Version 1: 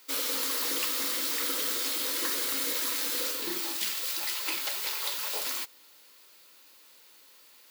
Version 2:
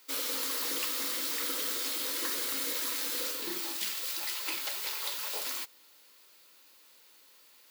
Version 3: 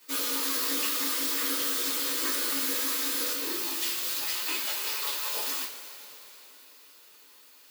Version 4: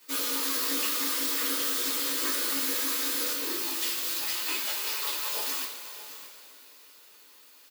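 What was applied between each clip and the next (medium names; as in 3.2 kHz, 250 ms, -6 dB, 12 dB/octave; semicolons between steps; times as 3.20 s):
high-pass 90 Hz; trim -3 dB
two-slope reverb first 0.21 s, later 3.6 s, from -20 dB, DRR -7 dB; trim -3.5 dB
delay 618 ms -14.5 dB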